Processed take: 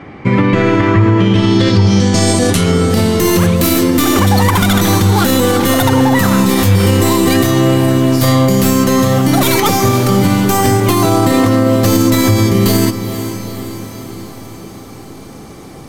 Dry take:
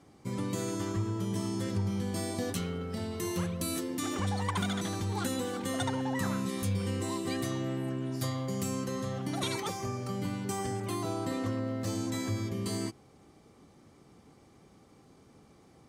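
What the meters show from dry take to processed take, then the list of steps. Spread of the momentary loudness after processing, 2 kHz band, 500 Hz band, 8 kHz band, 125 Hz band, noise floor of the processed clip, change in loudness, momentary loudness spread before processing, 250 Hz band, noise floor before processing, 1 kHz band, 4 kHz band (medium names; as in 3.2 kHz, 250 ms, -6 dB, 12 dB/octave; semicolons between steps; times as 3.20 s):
8 LU, +23.0 dB, +23.0 dB, +21.0 dB, +22.5 dB, -32 dBFS, +22.5 dB, 3 LU, +22.5 dB, -60 dBFS, +22.5 dB, +22.0 dB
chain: tracing distortion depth 0.32 ms; low-pass sweep 2.2 kHz -> 14 kHz, 1.05–2.90 s; echo that smears into a reverb 466 ms, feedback 61%, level -13 dB; loudness maximiser +25.5 dB; trim -1 dB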